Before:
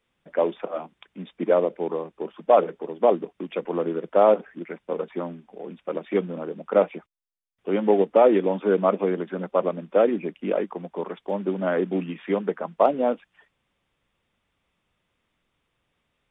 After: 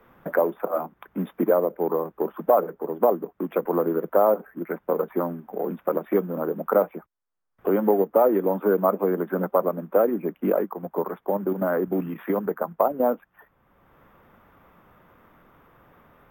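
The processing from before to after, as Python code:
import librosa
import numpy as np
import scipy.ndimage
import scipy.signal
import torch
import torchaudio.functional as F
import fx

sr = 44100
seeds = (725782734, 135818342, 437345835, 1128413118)

y = fx.high_shelf_res(x, sr, hz=2000.0, db=-13.5, q=1.5)
y = fx.level_steps(y, sr, step_db=9, at=(10.69, 13.0))
y = np.repeat(scipy.signal.resample_poly(y, 1, 3), 3)[:len(y)]
y = fx.band_squash(y, sr, depth_pct=70)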